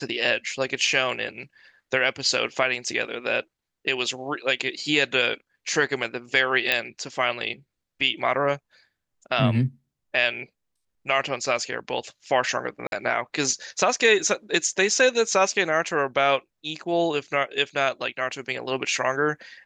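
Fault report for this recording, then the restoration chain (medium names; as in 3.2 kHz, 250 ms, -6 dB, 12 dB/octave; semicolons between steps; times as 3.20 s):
6.72 s: pop -8 dBFS
12.87–12.92 s: dropout 51 ms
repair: de-click; interpolate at 12.87 s, 51 ms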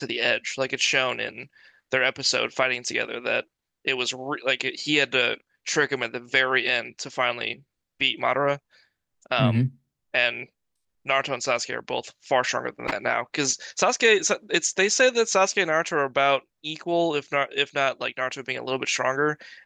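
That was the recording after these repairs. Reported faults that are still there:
nothing left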